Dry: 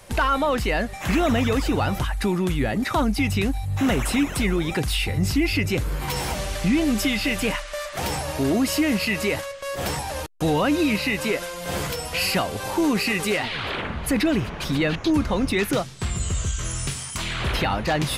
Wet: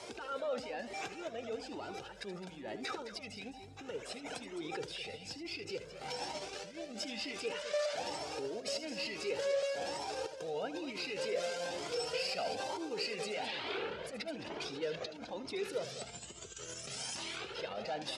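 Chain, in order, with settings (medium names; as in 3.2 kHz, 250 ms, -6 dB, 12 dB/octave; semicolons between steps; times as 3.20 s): tilt EQ -1.5 dB/octave; compressor with a negative ratio -25 dBFS, ratio -0.5; peak limiter -27.5 dBFS, peak gain reduction 17.5 dB; cabinet simulation 390–8300 Hz, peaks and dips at 450 Hz +7 dB, 1.1 kHz -10 dB, 1.9 kHz -6 dB, 5.1 kHz +5 dB; loudspeakers at several distances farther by 26 m -12 dB, 73 m -11 dB; Shepard-style flanger rising 1.1 Hz; trim +3.5 dB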